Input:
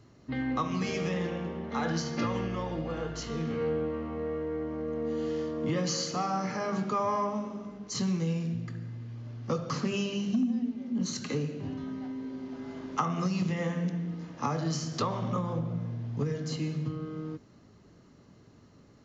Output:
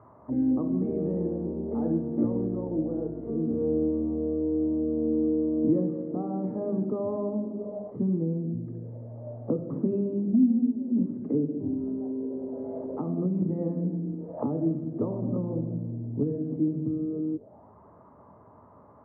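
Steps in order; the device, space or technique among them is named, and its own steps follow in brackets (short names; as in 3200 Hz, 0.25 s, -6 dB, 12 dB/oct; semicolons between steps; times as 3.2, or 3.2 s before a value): bell 450 Hz +2.5 dB; envelope filter bass rig (envelope low-pass 320–1200 Hz down, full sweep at -32 dBFS; speaker cabinet 78–2300 Hz, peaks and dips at 79 Hz +7 dB, 150 Hz -4 dB, 340 Hz -3 dB, 630 Hz +9 dB, 900 Hz +7 dB)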